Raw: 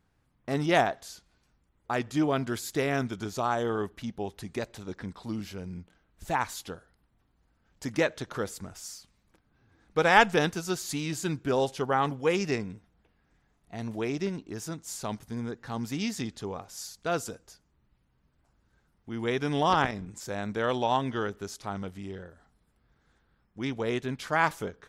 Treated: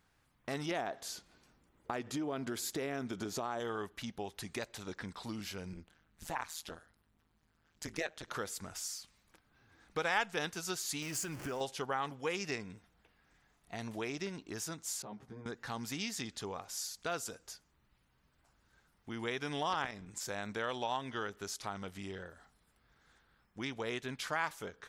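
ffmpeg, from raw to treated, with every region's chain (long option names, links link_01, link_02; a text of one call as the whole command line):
ffmpeg -i in.wav -filter_complex "[0:a]asettb=1/sr,asplit=3[link_01][link_02][link_03];[link_01]atrim=end=0.714[link_04];[link_02]atrim=start=0.71:end=3.6,asetpts=PTS-STARTPTS,afade=type=in:duration=0.004:curve=qsin,afade=type=out:start_time=2.886:duration=0.004:curve=qsin,equalizer=frequency=310:width=0.48:gain=10,acompressor=threshold=-26dB:ratio=3:attack=3.2:release=140:knee=1:detection=peak[link_05];[link_03]atrim=start=3.596[link_06];[link_04][link_05]acrossfade=duration=0.004:curve1=hsin:curve2=qsin[link_07];[link_07][link_06]acrossfade=duration=0.004:curve1=qsin:curve2=hsin,asettb=1/sr,asplit=3[link_08][link_09][link_10];[link_08]atrim=end=5.734[link_11];[link_09]atrim=start=5.73:end=8.28,asetpts=PTS-STARTPTS,afade=type=in:duration=0.004:curve=qsin,afade=type=out:start_time=2.546:duration=0.004:curve=qsin,aeval=exprs='val(0)+0.000501*(sin(2*PI*50*n/s)+sin(2*PI*2*50*n/s)/2+sin(2*PI*3*50*n/s)/3+sin(2*PI*4*50*n/s)/4+sin(2*PI*5*50*n/s)/5)':channel_layout=same,tremolo=f=160:d=0.974[link_12];[link_10]atrim=start=8.276[link_13];[link_11][link_12]acrossfade=duration=0.004:curve1=hsin:curve2=qsin[link_14];[link_14][link_13]acrossfade=duration=0.004:curve1=qsin:curve2=hsin,asettb=1/sr,asplit=3[link_15][link_16][link_17];[link_15]atrim=end=11.024[link_18];[link_16]atrim=start=11.02:end=11.61,asetpts=PTS-STARTPTS,afade=type=in:duration=0.004:curve=qsin,afade=type=out:start_time=0.586:duration=0.004:curve=qsin,aeval=exprs='val(0)+0.5*0.0133*sgn(val(0))':channel_layout=same,acompressor=threshold=-29dB:ratio=4:attack=3.2:release=140:knee=1:detection=peak,equalizer=frequency=3800:width_type=o:width=0.25:gain=-13.5[link_19];[link_17]atrim=start=11.606[link_20];[link_18][link_19]acrossfade=duration=0.004:curve1=hsin:curve2=qsin[link_21];[link_21][link_20]acrossfade=duration=0.004:curve1=qsin:curve2=hsin,asettb=1/sr,asplit=3[link_22][link_23][link_24];[link_22]atrim=end=15.024[link_25];[link_23]atrim=start=15.02:end=15.46,asetpts=PTS-STARTPTS,afade=type=in:duration=0.004:curve=qsin,afade=type=out:start_time=0.436:duration=0.004:curve=qsin,acompressor=threshold=-41dB:ratio=2.5:attack=3.2:release=140:knee=1:detection=peak,bandpass=frequency=300:width_type=q:width=0.57,asplit=2[link_26][link_27];[link_27]adelay=15,volume=-2dB[link_28];[link_26][link_28]amix=inputs=2:normalize=0,atrim=end_sample=19404[link_29];[link_24]atrim=start=15.456[link_30];[link_25][link_29]acrossfade=duration=0.004:curve1=hsin:curve2=qsin[link_31];[link_31][link_30]acrossfade=duration=0.004:curve1=qsin:curve2=hsin,tiltshelf=frequency=670:gain=-5,acompressor=threshold=-41dB:ratio=2" out.wav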